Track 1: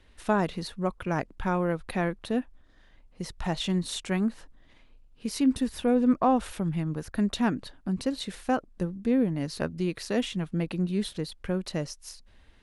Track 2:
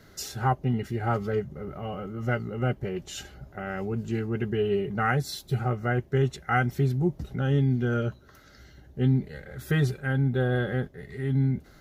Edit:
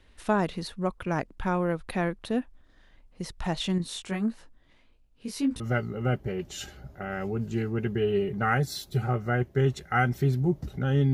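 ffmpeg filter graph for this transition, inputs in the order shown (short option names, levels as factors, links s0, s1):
-filter_complex "[0:a]asettb=1/sr,asplit=3[s0][s1][s2];[s0]atrim=end=3.784[s3];[s1]atrim=start=3.78:end=5.6,asetpts=PTS-STARTPTS,afade=t=in:d=0.004:c=qsin,afade=t=out:st=1.816:d=0.004:c=qsin,flanger=delay=17.5:depth=3.4:speed=1.7[s4];[s2]atrim=start=5.596[s5];[s3][s4]acrossfade=d=0.004:c1=hsin:c2=qsin[s6];[s6][s5]acrossfade=d=0.004:c1=qsin:c2=hsin,apad=whole_dur=11.13,atrim=end=11.13,atrim=end=5.602[s7];[1:a]atrim=start=2.168:end=7.7[s8];[s7][s8]acrossfade=d=0.004:c1=hsin:c2=hsin"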